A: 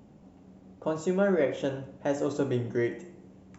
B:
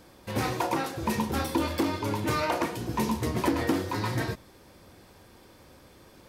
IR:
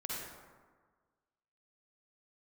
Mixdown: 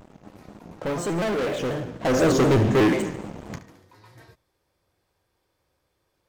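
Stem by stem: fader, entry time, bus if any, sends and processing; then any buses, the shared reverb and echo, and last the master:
1.91 s -8 dB -> 2.22 s 0 dB, 0.00 s, no send, echo send -14 dB, sample leveller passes 5; shaped vibrato square 4.1 Hz, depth 160 cents
-18.5 dB, 0.00 s, no send, no echo send, bell 230 Hz -10 dB 0.72 oct; auto duck -8 dB, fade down 0.50 s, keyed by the first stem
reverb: off
echo: feedback echo 72 ms, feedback 58%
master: dry

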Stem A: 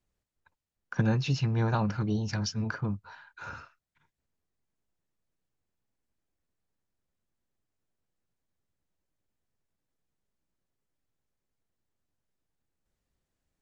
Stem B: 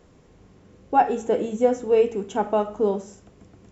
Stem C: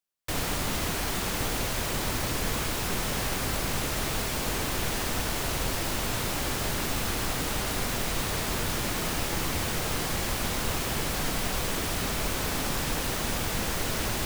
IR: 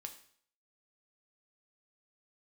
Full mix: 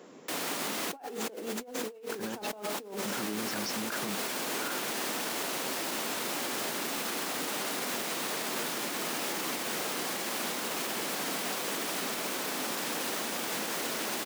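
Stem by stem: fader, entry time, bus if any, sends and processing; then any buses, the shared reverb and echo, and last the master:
-2.5 dB, 1.20 s, muted 2.47–3.05, send -4 dB, dry
+1.5 dB, 0.00 s, no send, dry
-4.5 dB, 0.00 s, no send, dry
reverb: on, RT60 0.60 s, pre-delay 4 ms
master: HPF 220 Hz 24 dB/oct; negative-ratio compressor -34 dBFS, ratio -1; limiter -24 dBFS, peak gain reduction 6.5 dB

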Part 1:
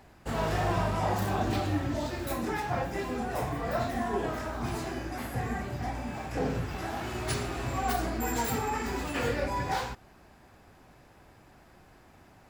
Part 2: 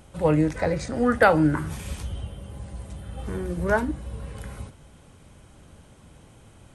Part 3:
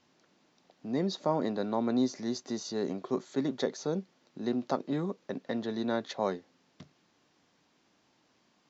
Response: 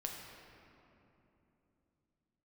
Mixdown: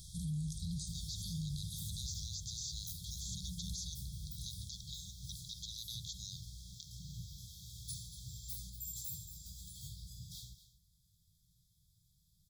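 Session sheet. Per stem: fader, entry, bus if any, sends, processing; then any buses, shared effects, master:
-13.0 dB, 0.60 s, no send, echo send -14.5 dB, dry
-2.5 dB, 0.00 s, send -14.5 dB, no echo send, auto duck -13 dB, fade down 1.85 s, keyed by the third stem
-4.5 dB, 0.00 s, no send, no echo send, HPF 840 Hz 12 dB/oct; spectral compressor 2:1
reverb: on, RT60 3.1 s, pre-delay 7 ms
echo: echo 0.234 s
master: brick-wall FIR band-stop 190–3200 Hz; high shelf 5600 Hz +10.5 dB; limiter -32.5 dBFS, peak gain reduction 10.5 dB

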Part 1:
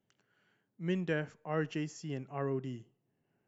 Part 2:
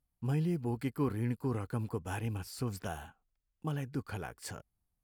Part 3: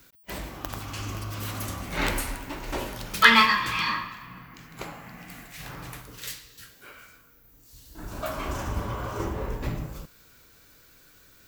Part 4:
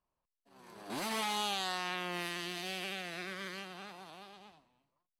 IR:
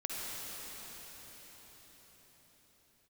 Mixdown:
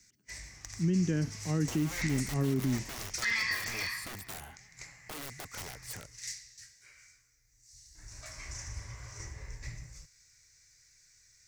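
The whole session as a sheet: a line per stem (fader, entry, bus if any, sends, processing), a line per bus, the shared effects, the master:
-10.0 dB, 0.00 s, no send, resonant low shelf 400 Hz +12 dB, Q 1.5; AGC gain up to 9 dB
-1.0 dB, 1.45 s, no send, wrapped overs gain 34.5 dB; compressor, threshold -41 dBFS, peak gain reduction 4.5 dB
-11.0 dB, 0.00 s, no send, EQ curve 130 Hz 0 dB, 200 Hz -16 dB, 1400 Hz -10 dB, 2000 Hz +9 dB, 3100 Hz -10 dB, 5700 Hz +13 dB, 8200 Hz +4 dB, 14000 Hz -21 dB
-15.5 dB, 0.20 s, no send, compressor, threshold -44 dBFS, peak gain reduction 12.5 dB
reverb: off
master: high shelf 6200 Hz +6.5 dB; limiter -21.5 dBFS, peak gain reduction 11 dB

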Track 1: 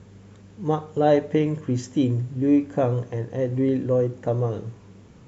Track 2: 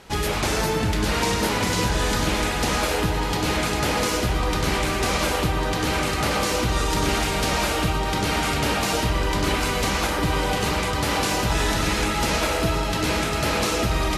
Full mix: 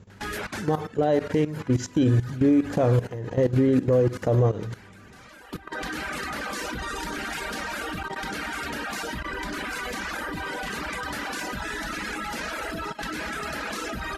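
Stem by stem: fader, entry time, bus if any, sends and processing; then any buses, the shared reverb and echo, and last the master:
0.0 dB, 0.00 s, no send, AGC gain up to 12 dB
-3.5 dB, 0.10 s, no send, notches 50/100/150/200/250/300/350/400/450/500 Hz; reverb removal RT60 1.6 s; fifteen-band EQ 100 Hz -12 dB, 250 Hz +7 dB, 1600 Hz +11 dB; auto duck -11 dB, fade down 1.20 s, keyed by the first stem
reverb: off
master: level quantiser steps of 16 dB; limiter -13 dBFS, peak gain reduction 6.5 dB

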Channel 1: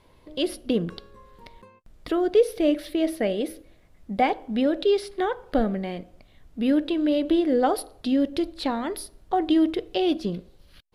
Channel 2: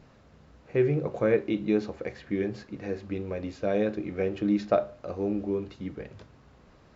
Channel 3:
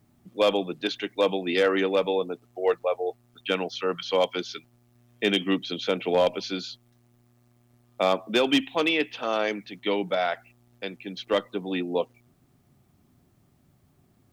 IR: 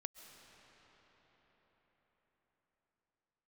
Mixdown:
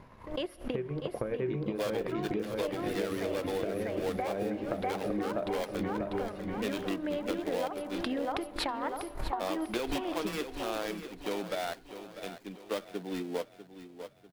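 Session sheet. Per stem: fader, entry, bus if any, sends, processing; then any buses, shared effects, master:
-6.0 dB, 0.00 s, bus A, send -12.5 dB, echo send -9.5 dB, ten-band EQ 250 Hz -5 dB, 1000 Hz +11 dB, 2000 Hz +6 dB, 4000 Hz -8 dB; backwards sustainer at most 130 dB/s; auto duck -8 dB, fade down 0.90 s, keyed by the second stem
+0.5 dB, 0.00 s, bus A, no send, echo send -5.5 dB, high shelf 4600 Hz -9 dB
-6.5 dB, 1.40 s, no bus, no send, echo send -13.5 dB, switching dead time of 0.18 ms
bus A: 0.0 dB, transient shaper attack +8 dB, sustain -10 dB; compressor, threshold -29 dBFS, peak gain reduction 17 dB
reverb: on, RT60 5.6 s, pre-delay 95 ms
echo: feedback echo 0.645 s, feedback 43%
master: compressor, threshold -29 dBFS, peak gain reduction 9.5 dB

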